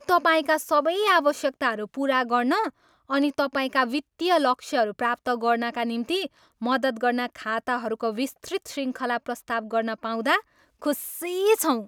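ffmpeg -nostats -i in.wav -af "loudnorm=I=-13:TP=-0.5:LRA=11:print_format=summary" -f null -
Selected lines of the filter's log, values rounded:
Input Integrated:    -25.1 LUFS
Input True Peak:      -8.1 dBTP
Input LRA:             3.7 LU
Input Threshold:     -35.3 LUFS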